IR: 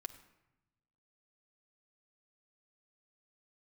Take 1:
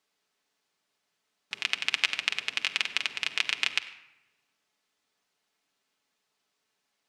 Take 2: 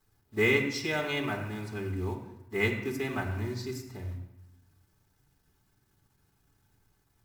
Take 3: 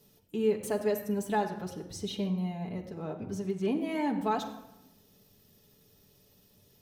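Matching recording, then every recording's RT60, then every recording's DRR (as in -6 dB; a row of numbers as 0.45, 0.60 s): 1; 0.95, 0.90, 0.95 s; 4.5, -9.0, -1.5 dB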